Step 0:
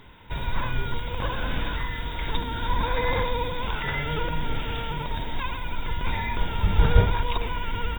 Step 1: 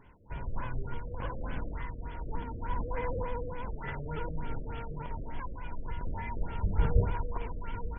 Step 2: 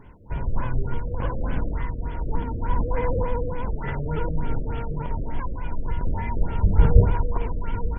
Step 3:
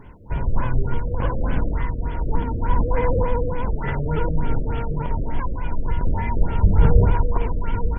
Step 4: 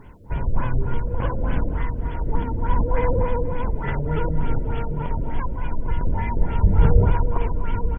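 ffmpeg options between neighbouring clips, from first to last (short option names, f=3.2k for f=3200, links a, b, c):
-af "aemphasis=mode=reproduction:type=75fm,afftfilt=real='re*lt(b*sr/1024,610*pow(3500/610,0.5+0.5*sin(2*PI*3.4*pts/sr)))':imag='im*lt(b*sr/1024,610*pow(3500/610,0.5+0.5*sin(2*PI*3.4*pts/sr)))':win_size=1024:overlap=0.75,volume=-8.5dB"
-af "tiltshelf=f=840:g=3.5,volume=7.5dB"
-af "alimiter=level_in=7dB:limit=-1dB:release=50:level=0:latency=1,volume=-3dB"
-af "acrusher=bits=11:mix=0:aa=0.000001,aecho=1:1:242|484|726:0.178|0.0622|0.0218,volume=-1dB"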